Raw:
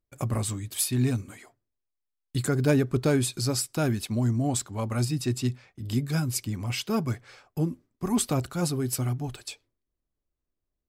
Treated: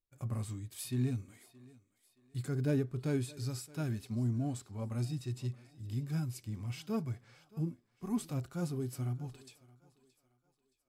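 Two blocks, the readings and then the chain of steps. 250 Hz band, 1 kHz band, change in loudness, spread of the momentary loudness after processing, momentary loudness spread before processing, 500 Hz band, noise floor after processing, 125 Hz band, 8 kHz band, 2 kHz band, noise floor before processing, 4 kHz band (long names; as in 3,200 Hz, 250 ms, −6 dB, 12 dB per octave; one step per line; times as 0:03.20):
−9.5 dB, −14.0 dB, −10.0 dB, 12 LU, 10 LU, −11.5 dB, −79 dBFS, −8.0 dB, −17.5 dB, −14.0 dB, −84 dBFS, −16.0 dB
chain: harmonic and percussive parts rebalanced percussive −12 dB
feedback echo with a high-pass in the loop 622 ms, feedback 40%, high-pass 260 Hz, level −19.5 dB
level −7.5 dB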